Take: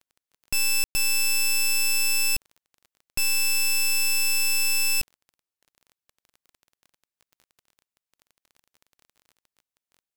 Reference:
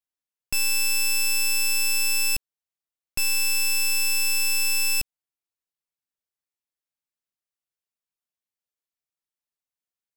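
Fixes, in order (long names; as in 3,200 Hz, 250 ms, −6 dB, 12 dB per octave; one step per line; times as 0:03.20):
click removal
ambience match 0:00.84–0:00.95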